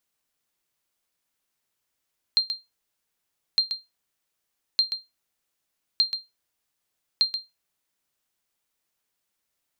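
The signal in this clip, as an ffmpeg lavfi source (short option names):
-f lavfi -i "aevalsrc='0.251*(sin(2*PI*4180*mod(t,1.21))*exp(-6.91*mod(t,1.21)/0.2)+0.376*sin(2*PI*4180*max(mod(t,1.21)-0.13,0))*exp(-6.91*max(mod(t,1.21)-0.13,0)/0.2))':d=6.05:s=44100"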